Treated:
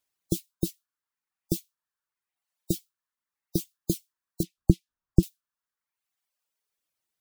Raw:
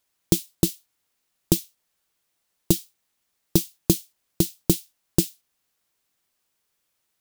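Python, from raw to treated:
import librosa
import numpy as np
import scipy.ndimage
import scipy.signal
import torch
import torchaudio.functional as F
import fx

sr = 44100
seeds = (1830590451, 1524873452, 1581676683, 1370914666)

y = fx.spec_gate(x, sr, threshold_db=-25, keep='strong')
y = fx.riaa(y, sr, side='playback', at=(4.43, 5.23))
y = fx.dereverb_blind(y, sr, rt60_s=1.1)
y = F.gain(torch.from_numpy(y), -7.0).numpy()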